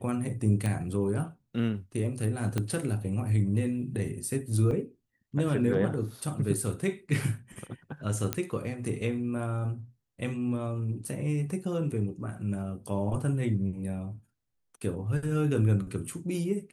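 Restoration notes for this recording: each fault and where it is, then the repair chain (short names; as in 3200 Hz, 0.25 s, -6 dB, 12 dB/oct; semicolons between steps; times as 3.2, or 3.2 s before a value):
0.66 pop -19 dBFS
2.58 pop -16 dBFS
4.71 gap 2 ms
8.33 pop -11 dBFS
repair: de-click; interpolate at 4.71, 2 ms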